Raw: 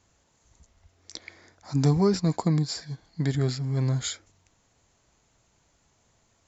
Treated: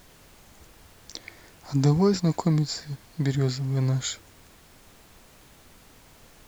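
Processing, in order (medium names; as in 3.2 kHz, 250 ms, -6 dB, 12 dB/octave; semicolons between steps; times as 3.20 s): added noise pink -54 dBFS; trim +1 dB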